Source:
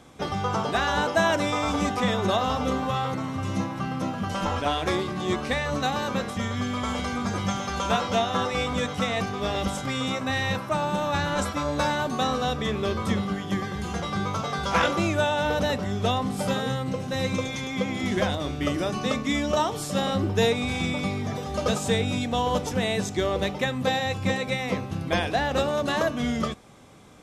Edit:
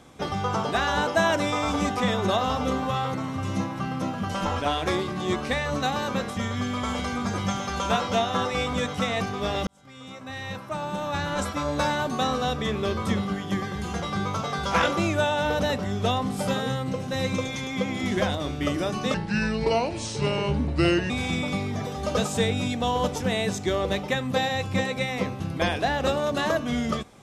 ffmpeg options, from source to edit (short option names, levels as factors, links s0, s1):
-filter_complex "[0:a]asplit=4[s0][s1][s2][s3];[s0]atrim=end=9.67,asetpts=PTS-STARTPTS,afade=t=out:st=9.666:d=0.004:c=hsin[s4];[s1]atrim=start=9.67:end=19.144,asetpts=PTS-STARTPTS,afade=t=in:d=2.04[s5];[s2]atrim=start=19.14:end=20.61,asetpts=PTS-STARTPTS,asetrate=33075,aresample=44100[s6];[s3]atrim=start=20.606[s7];[s4][s5]concat=n=2:v=0:a=1[s8];[s8][s6]acrossfade=d=0.004:c1=hsin:c2=hsin[s9];[s9][s7]acrossfade=d=0.004:c1=hsin:c2=hsin"